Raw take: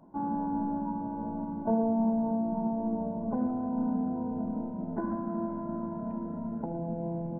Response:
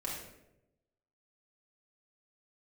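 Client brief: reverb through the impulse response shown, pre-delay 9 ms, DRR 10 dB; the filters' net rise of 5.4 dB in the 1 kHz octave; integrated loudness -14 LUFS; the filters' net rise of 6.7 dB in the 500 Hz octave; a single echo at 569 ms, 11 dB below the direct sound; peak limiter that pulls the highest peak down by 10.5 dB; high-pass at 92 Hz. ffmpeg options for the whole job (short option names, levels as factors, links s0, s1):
-filter_complex "[0:a]highpass=92,equalizer=f=500:t=o:g=8,equalizer=f=1000:t=o:g=3.5,alimiter=level_in=1.06:limit=0.0631:level=0:latency=1,volume=0.944,aecho=1:1:569:0.282,asplit=2[s0][s1];[1:a]atrim=start_sample=2205,adelay=9[s2];[s1][s2]afir=irnorm=-1:irlink=0,volume=0.251[s3];[s0][s3]amix=inputs=2:normalize=0,volume=7.94"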